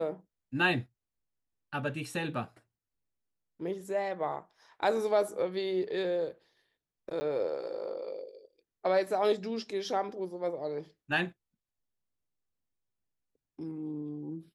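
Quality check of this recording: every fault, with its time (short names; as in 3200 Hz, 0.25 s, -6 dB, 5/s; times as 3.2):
7.2–7.21 gap 10 ms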